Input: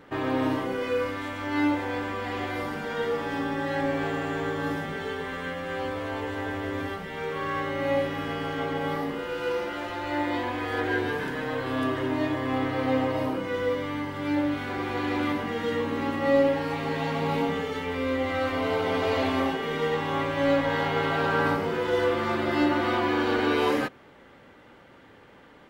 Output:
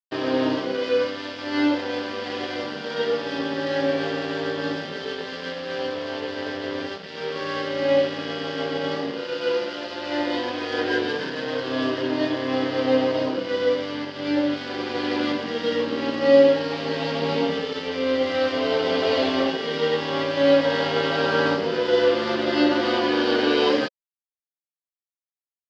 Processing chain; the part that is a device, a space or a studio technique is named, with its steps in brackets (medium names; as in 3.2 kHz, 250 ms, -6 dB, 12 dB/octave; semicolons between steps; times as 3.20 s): blown loudspeaker (crossover distortion -38.5 dBFS; cabinet simulation 180–5400 Hz, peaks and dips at 540 Hz +4 dB, 840 Hz -5 dB, 1.2 kHz -5 dB, 2.2 kHz -5 dB, 3.1 kHz +5 dB, 4.8 kHz +10 dB); trim +5.5 dB